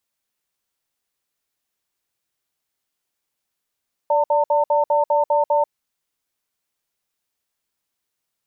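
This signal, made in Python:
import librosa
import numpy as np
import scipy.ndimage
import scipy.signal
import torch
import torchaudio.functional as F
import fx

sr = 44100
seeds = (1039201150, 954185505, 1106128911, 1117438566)

y = fx.cadence(sr, length_s=1.58, low_hz=584.0, high_hz=903.0, on_s=0.14, off_s=0.06, level_db=-17.0)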